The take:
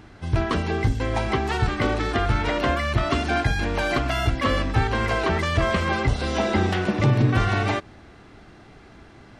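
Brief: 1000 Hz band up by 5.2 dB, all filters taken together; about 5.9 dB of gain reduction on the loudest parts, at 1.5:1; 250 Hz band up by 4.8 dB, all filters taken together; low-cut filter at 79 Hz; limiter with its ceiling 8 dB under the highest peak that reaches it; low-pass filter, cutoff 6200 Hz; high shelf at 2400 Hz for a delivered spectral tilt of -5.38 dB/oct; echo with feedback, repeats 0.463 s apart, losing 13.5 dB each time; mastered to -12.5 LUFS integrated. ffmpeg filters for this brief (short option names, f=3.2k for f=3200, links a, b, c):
-af "highpass=79,lowpass=6.2k,equalizer=f=250:t=o:g=6,equalizer=f=1k:t=o:g=7.5,highshelf=f=2.4k:g=-5,acompressor=threshold=-30dB:ratio=1.5,alimiter=limit=-18dB:level=0:latency=1,aecho=1:1:463|926:0.211|0.0444,volume=15dB"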